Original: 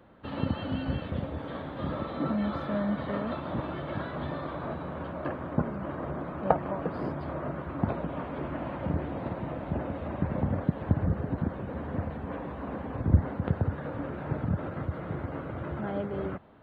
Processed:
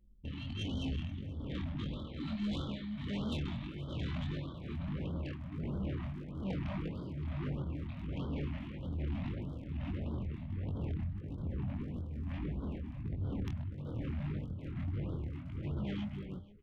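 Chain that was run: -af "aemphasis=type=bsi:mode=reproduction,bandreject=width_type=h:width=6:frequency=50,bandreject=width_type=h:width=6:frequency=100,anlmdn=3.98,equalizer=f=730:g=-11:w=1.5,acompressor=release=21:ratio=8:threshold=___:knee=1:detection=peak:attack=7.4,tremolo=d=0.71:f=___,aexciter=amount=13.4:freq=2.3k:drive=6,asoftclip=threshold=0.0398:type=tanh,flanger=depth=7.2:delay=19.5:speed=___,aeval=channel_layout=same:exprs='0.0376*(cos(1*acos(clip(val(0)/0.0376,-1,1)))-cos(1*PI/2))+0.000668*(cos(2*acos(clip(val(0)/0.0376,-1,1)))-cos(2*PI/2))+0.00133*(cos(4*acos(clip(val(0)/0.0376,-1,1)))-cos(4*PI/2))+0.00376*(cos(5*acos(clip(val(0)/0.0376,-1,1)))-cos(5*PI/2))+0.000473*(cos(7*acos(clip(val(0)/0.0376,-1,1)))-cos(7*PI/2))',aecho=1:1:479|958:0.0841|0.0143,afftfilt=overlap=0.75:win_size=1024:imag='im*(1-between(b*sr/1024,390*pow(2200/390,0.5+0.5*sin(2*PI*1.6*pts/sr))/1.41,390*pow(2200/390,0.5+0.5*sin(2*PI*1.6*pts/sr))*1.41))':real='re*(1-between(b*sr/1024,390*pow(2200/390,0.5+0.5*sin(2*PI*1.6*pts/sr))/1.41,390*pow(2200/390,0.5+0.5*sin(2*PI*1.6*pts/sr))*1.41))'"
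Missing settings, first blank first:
0.0316, 1.2, 1.6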